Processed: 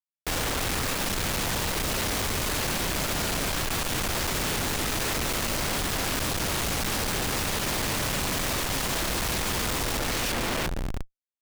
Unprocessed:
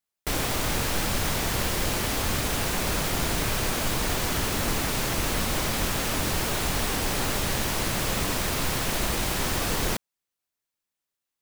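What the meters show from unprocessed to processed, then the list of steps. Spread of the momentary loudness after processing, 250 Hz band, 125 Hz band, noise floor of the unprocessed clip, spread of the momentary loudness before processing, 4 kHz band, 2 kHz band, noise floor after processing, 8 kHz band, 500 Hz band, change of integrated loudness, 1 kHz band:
1 LU, −1.5 dB, −2.0 dB, below −85 dBFS, 0 LU, +0.5 dB, +0.5 dB, −72 dBFS, 0.0 dB, −1.0 dB, −0.5 dB, −0.5 dB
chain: tape wow and flutter 72 cents
echo with a time of its own for lows and highs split 1,700 Hz, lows 142 ms, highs 346 ms, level −5 dB
comparator with hysteresis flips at −37 dBFS
level −2 dB

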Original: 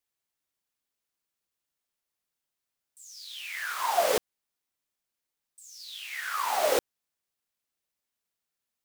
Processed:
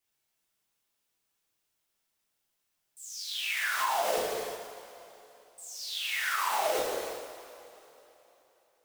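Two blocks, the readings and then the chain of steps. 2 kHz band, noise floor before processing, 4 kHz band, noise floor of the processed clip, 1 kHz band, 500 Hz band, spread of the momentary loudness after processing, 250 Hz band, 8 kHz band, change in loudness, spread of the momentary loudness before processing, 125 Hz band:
+2.5 dB, below −85 dBFS, +2.5 dB, −80 dBFS, −1.0 dB, −2.5 dB, 19 LU, −2.5 dB, 0.0 dB, −2.0 dB, 18 LU, can't be measured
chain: coupled-rooms reverb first 0.92 s, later 3.3 s, from −21 dB, DRR −5.5 dB
downward compressor 5 to 1, threshold −27 dBFS, peak gain reduction 12 dB

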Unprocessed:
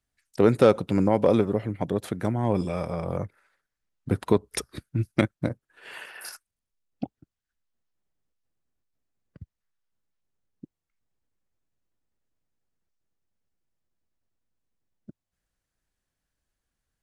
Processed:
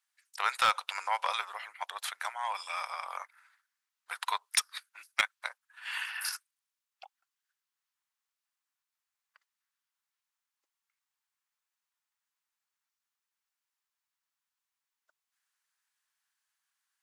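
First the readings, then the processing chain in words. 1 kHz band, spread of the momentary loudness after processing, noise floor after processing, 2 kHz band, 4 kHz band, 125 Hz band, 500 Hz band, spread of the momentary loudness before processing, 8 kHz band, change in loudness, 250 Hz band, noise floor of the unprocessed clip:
+0.5 dB, 16 LU, below −85 dBFS, +4.5 dB, +6.0 dB, below −40 dB, −24.5 dB, 20 LU, +4.0 dB, −8.5 dB, below −40 dB, below −85 dBFS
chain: Butterworth high-pass 910 Hz 36 dB per octave
dynamic equaliser 3,500 Hz, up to +4 dB, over −50 dBFS, Q 0.72
hard clipping −18 dBFS, distortion −18 dB
level +3 dB

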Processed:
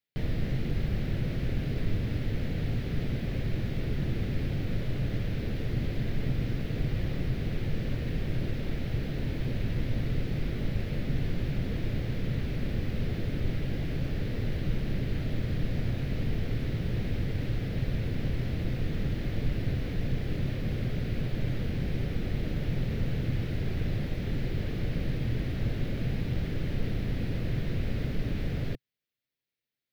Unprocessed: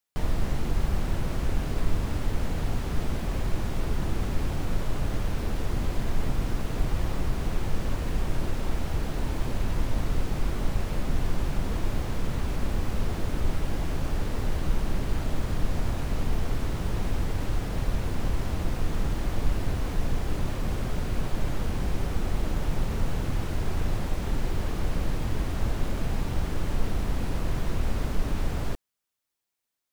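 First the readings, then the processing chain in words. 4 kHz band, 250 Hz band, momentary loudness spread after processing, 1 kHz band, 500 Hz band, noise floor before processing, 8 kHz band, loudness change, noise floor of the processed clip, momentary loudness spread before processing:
−3.0 dB, +0.5 dB, 1 LU, −11.0 dB, −2.5 dB, −33 dBFS, below −10 dB, −1.0 dB, −36 dBFS, 1 LU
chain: octave-band graphic EQ 125/250/500/1,000/2,000/4,000/8,000 Hz +11/+4/+6/−11/+8/+6/−11 dB
level −7 dB

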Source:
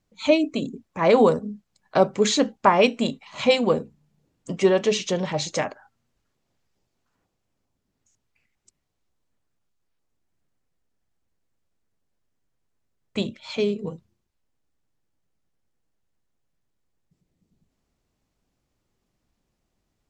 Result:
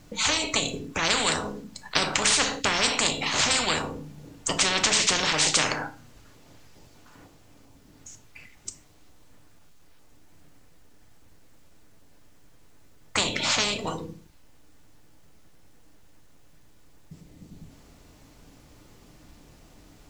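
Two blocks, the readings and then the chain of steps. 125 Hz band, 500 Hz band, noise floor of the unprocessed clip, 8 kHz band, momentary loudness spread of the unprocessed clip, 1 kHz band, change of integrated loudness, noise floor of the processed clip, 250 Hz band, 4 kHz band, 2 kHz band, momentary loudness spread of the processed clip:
−4.0 dB, −12.0 dB, −77 dBFS, +11.0 dB, 14 LU, −3.5 dB, −1.5 dB, −54 dBFS, −9.0 dB, +7.0 dB, +5.0 dB, 18 LU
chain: feedback delay network reverb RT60 0.35 s, low-frequency decay 1.25×, high-frequency decay 0.9×, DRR 8 dB
every bin compressed towards the loudest bin 10 to 1

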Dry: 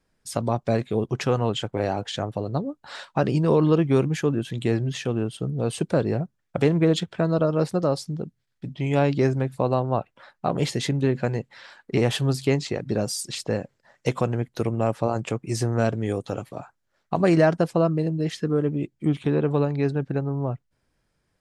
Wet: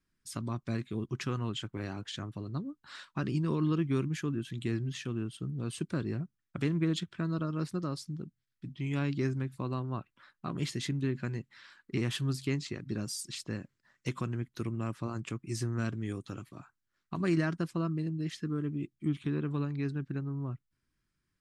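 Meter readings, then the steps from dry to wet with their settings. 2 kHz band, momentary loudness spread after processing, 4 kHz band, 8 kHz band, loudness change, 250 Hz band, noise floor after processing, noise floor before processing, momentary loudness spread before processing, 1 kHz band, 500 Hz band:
−8.5 dB, 11 LU, −8.5 dB, −8.5 dB, −10.5 dB, −8.5 dB, −82 dBFS, −74 dBFS, 10 LU, −14.5 dB, −16.5 dB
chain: flat-topped bell 620 Hz −13 dB 1.2 octaves
level −8.5 dB

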